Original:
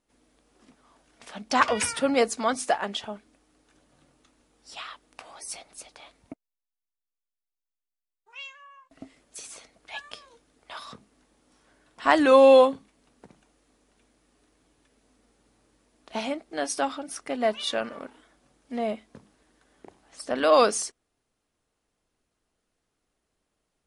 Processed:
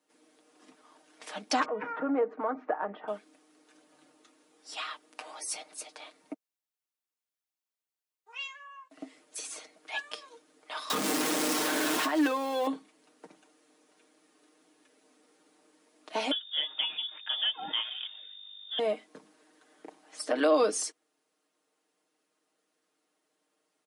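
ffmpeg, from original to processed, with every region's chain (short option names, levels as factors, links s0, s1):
-filter_complex "[0:a]asettb=1/sr,asplit=3[s0][s1][s2];[s0]atrim=end=1.654[s3];[s1]atrim=start=1.65:end=3.08,asetpts=PTS-STARTPTS,afade=t=in:d=0.004:c=qsin,afade=t=out:st=1.426:d=0.004:c=qsin,lowpass=f=1500:w=0.5412,lowpass=f=1500:w=1.3066,acompressor=threshold=0.0355:ratio=2:attack=3.2:release=140:knee=1:detection=peak[s4];[s2]atrim=start=3.076[s5];[s3][s4]acrossfade=d=0.004:c1=hsin:c2=qsin[s6];[s6][s5]acrossfade=d=0.004:c1=qsin:c2=hsin,asettb=1/sr,asplit=3[s7][s8][s9];[s7]atrim=end=10.904[s10];[s8]atrim=start=10.9:end=12.67,asetpts=PTS-STARTPTS,afade=t=in:d=0.004:c=qsin,afade=t=out:st=1.766:d=0.004:c=qsin,aeval=exprs='val(0)+0.5*0.0794*sgn(val(0))':c=same,acompressor=threshold=0.0562:ratio=6:attack=3.2:release=140:knee=1:detection=peak[s11];[s9]atrim=start=12.666[s12];[s10][s11]acrossfade=d=0.004:c1=hsin:c2=qsin[s13];[s13][s12]acrossfade=d=0.004:c1=qsin:c2=hsin,asettb=1/sr,asplit=3[s14][s15][s16];[s14]atrim=end=16.314[s17];[s15]atrim=start=16.31:end=18.79,asetpts=PTS-STARTPTS,afade=t=in:d=0.004:c=qsin,afade=t=out:st=2.476:d=0.004:c=qsin,equalizer=f=1400:w=2.9:g=-12.5,aeval=exprs='val(0)+0.00447*(sin(2*PI*50*n/s)+sin(2*PI*2*50*n/s)/2+sin(2*PI*3*50*n/s)/3+sin(2*PI*4*50*n/s)/4+sin(2*PI*5*50*n/s)/5)':c=same,lowpass=f=3100:t=q:w=0.5098,lowpass=f=3100:t=q:w=0.6013,lowpass=f=3100:t=q:w=0.9,lowpass=f=3100:t=q:w=2.563,afreqshift=-3700[s18];[s16]atrim=start=18.786[s19];[s17][s18]acrossfade=d=0.004:c1=hsin:c2=qsin[s20];[s20][s19]acrossfade=d=0.004:c1=qsin:c2=hsin,highpass=f=240:w=0.5412,highpass=f=240:w=1.3066,aecho=1:1:6.5:0.69,acrossover=split=400[s21][s22];[s22]acompressor=threshold=0.0447:ratio=5[s23];[s21][s23]amix=inputs=2:normalize=0"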